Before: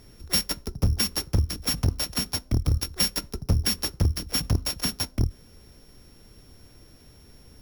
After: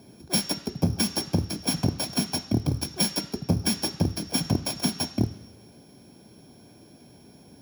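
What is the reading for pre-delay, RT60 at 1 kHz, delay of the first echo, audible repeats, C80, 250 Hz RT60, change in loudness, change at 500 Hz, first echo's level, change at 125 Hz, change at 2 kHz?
3 ms, 1.1 s, no echo audible, no echo audible, 15.5 dB, 1.0 s, −1.0 dB, +4.0 dB, no echo audible, −2.0 dB, −1.0 dB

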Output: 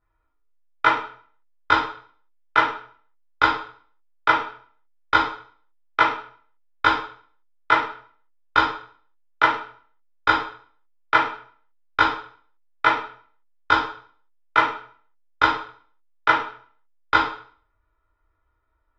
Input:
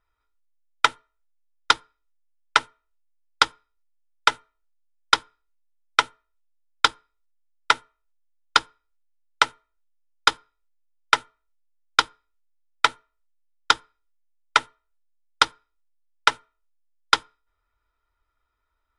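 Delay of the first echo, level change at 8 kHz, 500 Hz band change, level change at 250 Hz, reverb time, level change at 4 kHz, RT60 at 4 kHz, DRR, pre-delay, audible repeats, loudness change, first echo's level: no echo audible, below −15 dB, +6.5 dB, +11.5 dB, 0.50 s, −6.0 dB, 0.45 s, −8.5 dB, 8 ms, no echo audible, +1.0 dB, no echo audible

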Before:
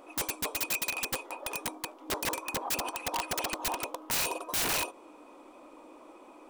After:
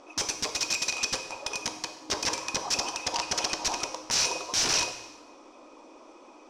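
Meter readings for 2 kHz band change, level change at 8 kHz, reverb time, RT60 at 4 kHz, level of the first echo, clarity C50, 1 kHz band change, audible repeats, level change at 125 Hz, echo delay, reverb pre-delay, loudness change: +2.0 dB, +6.5 dB, 1.0 s, 0.95 s, no echo audible, 10.0 dB, +1.0 dB, no echo audible, +1.0 dB, no echo audible, 4 ms, +4.0 dB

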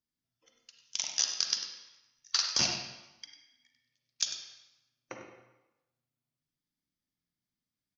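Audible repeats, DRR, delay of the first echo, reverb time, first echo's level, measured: 1, 2.0 dB, 98 ms, 1.0 s, −10.5 dB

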